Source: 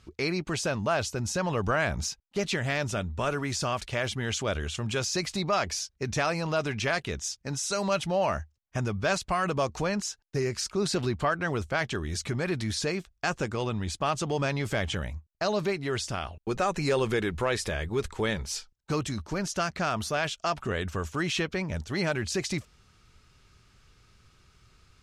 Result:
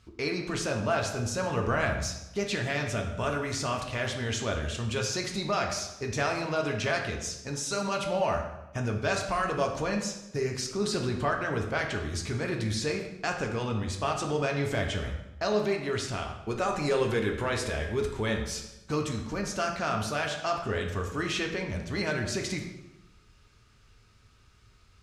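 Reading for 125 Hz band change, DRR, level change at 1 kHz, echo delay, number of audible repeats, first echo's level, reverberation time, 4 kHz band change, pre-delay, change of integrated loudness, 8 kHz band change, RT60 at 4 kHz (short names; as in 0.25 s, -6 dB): -0.5 dB, 1.5 dB, -0.5 dB, none, none, none, 0.95 s, -1.5 dB, 3 ms, -0.5 dB, -2.0 dB, 0.80 s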